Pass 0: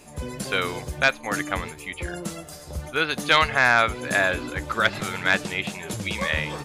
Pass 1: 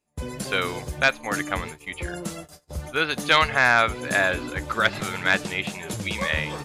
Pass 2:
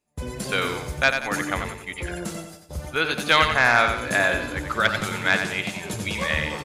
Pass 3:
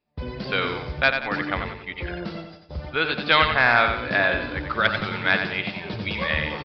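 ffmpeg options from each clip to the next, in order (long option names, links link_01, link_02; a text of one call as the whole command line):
ffmpeg -i in.wav -af "agate=range=-31dB:threshold=-38dB:ratio=16:detection=peak" out.wav
ffmpeg -i in.wav -af "aecho=1:1:91|182|273|364|455:0.447|0.179|0.0715|0.0286|0.0114" out.wav
ffmpeg -i in.wav -af "aresample=11025,aresample=44100" out.wav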